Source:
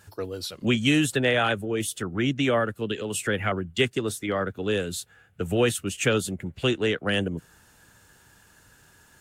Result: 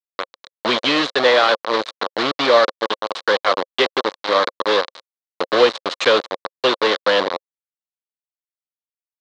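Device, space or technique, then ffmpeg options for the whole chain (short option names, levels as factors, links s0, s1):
hand-held game console: -filter_complex "[0:a]asplit=3[s0][s1][s2];[s0]afade=t=out:st=5.77:d=0.02[s3];[s1]aemphasis=mode=production:type=cd,afade=t=in:st=5.77:d=0.02,afade=t=out:st=6.17:d=0.02[s4];[s2]afade=t=in:st=6.17:d=0.02[s5];[s3][s4][s5]amix=inputs=3:normalize=0,acrusher=bits=3:mix=0:aa=0.000001,highpass=430,equalizer=f=530:t=q:w=4:g=8,equalizer=f=1100:t=q:w=4:g=7,equalizer=f=2600:t=q:w=4:g=-6,equalizer=f=4000:t=q:w=4:g=8,lowpass=f=4400:w=0.5412,lowpass=f=4400:w=1.3066,volume=2.11"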